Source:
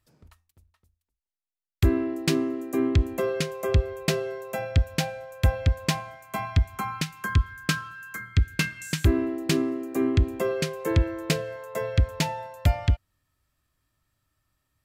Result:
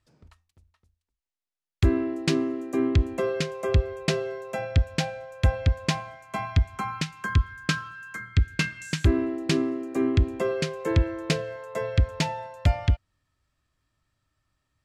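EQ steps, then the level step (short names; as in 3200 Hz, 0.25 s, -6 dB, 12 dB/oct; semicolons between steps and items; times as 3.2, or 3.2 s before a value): LPF 7300 Hz 12 dB/oct; 0.0 dB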